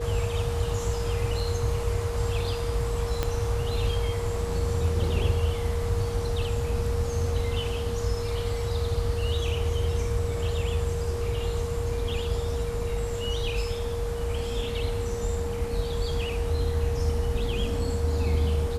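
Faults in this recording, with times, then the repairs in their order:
whine 470 Hz -31 dBFS
3.23 s: pop -12 dBFS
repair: de-click; band-stop 470 Hz, Q 30

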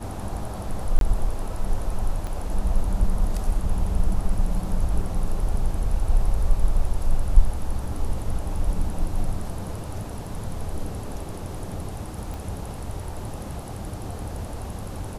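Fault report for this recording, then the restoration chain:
0.99–1.01 s: dropout 22 ms
2.27 s: pop -20 dBFS
12.34 s: pop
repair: de-click; interpolate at 0.99 s, 22 ms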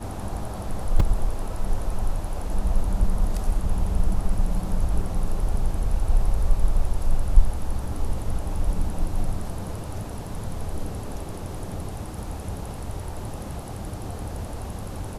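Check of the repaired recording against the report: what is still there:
2.27 s: pop

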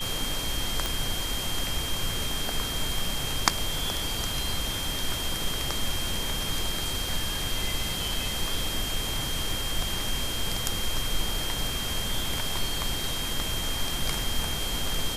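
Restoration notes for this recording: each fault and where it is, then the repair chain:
whine 3.2 kHz -33 dBFS
0.86 s: pop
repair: de-click; band-stop 3.2 kHz, Q 30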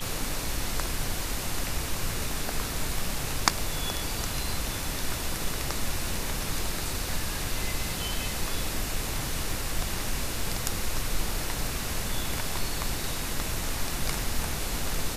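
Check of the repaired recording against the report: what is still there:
nothing left

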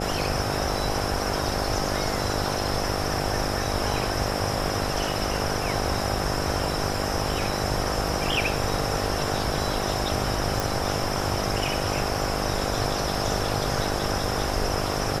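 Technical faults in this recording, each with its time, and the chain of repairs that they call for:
buzz 50 Hz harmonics 16 -30 dBFS
10.60 s: pop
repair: de-click; de-hum 50 Hz, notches 16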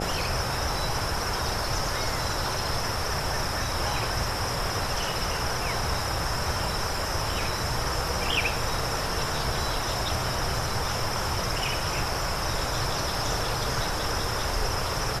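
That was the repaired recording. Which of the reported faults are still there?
nothing left

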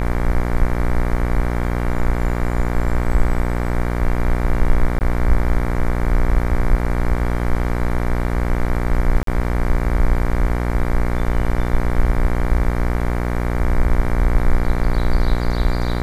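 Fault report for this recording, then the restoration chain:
buzz 60 Hz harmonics 39 -21 dBFS
4.99–5.01 s: dropout 19 ms
9.23–9.27 s: dropout 43 ms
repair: de-hum 60 Hz, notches 39; interpolate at 4.99 s, 19 ms; interpolate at 9.23 s, 43 ms

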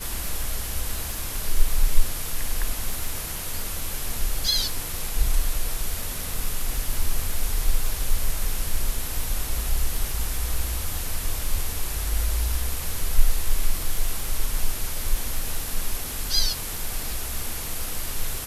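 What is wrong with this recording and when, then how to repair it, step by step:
crackle 29 per s -28 dBFS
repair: de-click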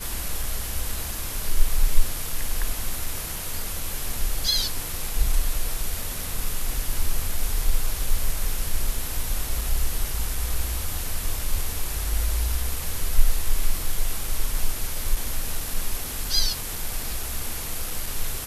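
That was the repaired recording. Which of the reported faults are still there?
nothing left

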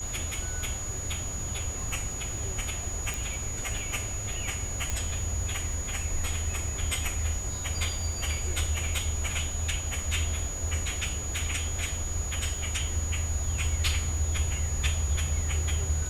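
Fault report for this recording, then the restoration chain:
crackle 33 per s -37 dBFS
whine 6.8 kHz -35 dBFS
3.14 s: pop
4.90 s: pop -15 dBFS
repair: de-click; band-stop 6.8 kHz, Q 30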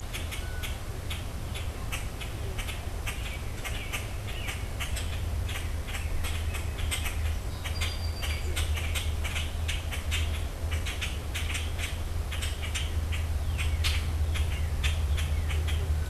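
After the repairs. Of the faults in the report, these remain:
3.14 s: pop

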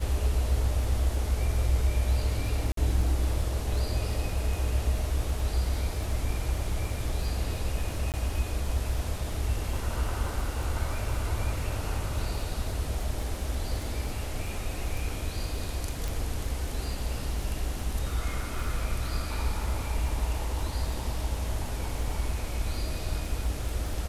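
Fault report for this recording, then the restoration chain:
crackle 40 per s -36 dBFS
2.72–2.77 s: dropout 53 ms
8.12–8.14 s: dropout 18 ms
16.08 s: pop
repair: de-click; interpolate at 2.72 s, 53 ms; interpolate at 8.12 s, 18 ms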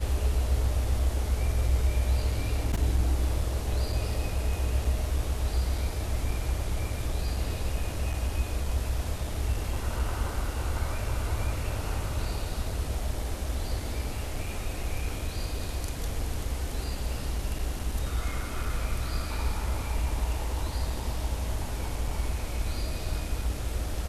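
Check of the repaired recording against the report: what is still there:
16.08 s: pop

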